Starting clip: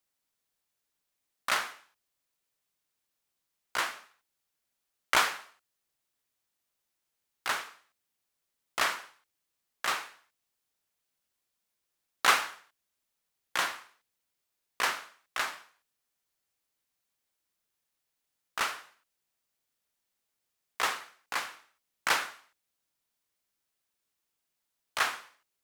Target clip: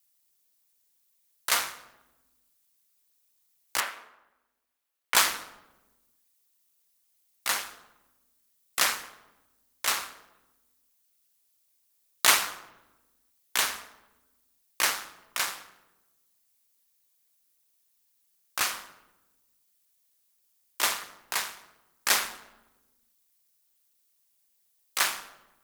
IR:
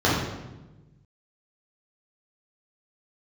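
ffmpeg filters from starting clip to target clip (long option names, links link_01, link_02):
-filter_complex "[0:a]asplit=2[link_01][link_02];[1:a]atrim=start_sample=2205[link_03];[link_02][link_03]afir=irnorm=-1:irlink=0,volume=-29.5dB[link_04];[link_01][link_04]amix=inputs=2:normalize=0,crystalizer=i=3:c=0,asettb=1/sr,asplit=3[link_05][link_06][link_07];[link_05]atrim=end=3.804[link_08];[link_06]atrim=start=3.8:end=5.15,asetpts=PTS-STARTPTS,afade=type=in:duration=0.004:curve=qsin,afade=type=out:start_time=1.346:duration=0.004:curve=qsin,acrossover=split=390 2900:gain=0.224 1 0.224[link_09][link_10][link_11];[link_09][link_10][link_11]amix=inputs=3:normalize=0[link_12];[link_07]atrim=start=5.146[link_13];[link_08][link_12]acrossfade=duration=0.004:curve1=hsin:curve2=qsin[link_14];[link_14][link_13]acrossfade=duration=0.004:curve1=qsin:curve2=hsin,aeval=exprs='val(0)*sin(2*PI*100*n/s)':channel_layout=same,volume=1.5dB"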